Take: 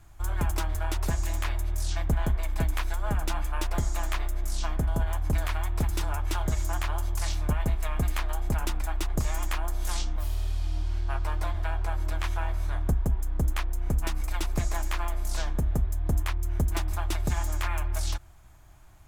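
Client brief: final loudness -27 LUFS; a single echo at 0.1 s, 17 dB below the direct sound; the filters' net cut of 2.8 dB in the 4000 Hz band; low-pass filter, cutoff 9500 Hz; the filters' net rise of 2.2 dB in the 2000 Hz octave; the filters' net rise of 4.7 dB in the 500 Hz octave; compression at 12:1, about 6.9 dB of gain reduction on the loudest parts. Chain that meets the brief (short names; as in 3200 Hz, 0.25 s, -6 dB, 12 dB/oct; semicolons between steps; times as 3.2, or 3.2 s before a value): LPF 9500 Hz; bell 500 Hz +6.5 dB; bell 2000 Hz +3.5 dB; bell 4000 Hz -5 dB; compressor 12:1, threshold -27 dBFS; echo 0.1 s -17 dB; gain +7.5 dB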